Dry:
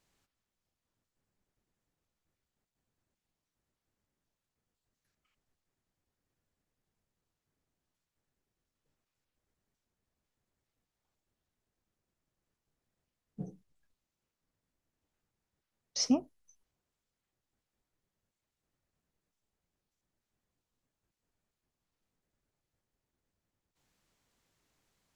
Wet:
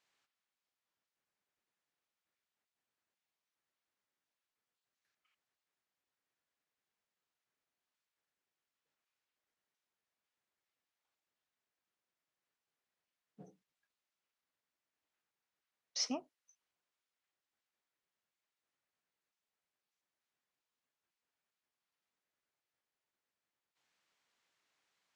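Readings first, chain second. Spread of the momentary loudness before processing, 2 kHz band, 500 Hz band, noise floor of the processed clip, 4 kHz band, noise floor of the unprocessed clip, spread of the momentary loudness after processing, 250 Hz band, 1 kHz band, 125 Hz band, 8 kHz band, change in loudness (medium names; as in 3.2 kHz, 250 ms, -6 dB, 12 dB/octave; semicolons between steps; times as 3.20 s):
16 LU, 0.0 dB, -7.0 dB, under -85 dBFS, -3.5 dB, under -85 dBFS, 7 LU, -13.5 dB, -4.0 dB, -17.5 dB, -4.5 dB, -7.0 dB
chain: band-pass filter 2.2 kHz, Q 0.54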